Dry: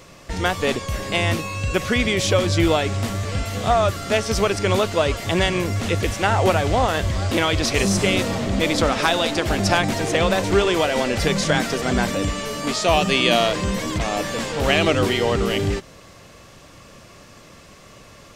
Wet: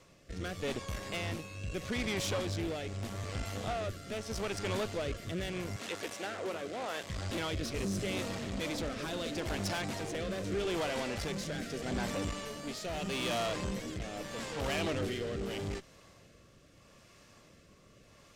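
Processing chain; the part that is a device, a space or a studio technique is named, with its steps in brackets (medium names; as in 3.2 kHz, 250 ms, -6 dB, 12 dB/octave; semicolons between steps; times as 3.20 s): overdriven rotary cabinet (valve stage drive 21 dB, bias 0.7; rotary cabinet horn 0.8 Hz); 5.76–7.10 s: high-pass 300 Hz 12 dB/octave; trim -8 dB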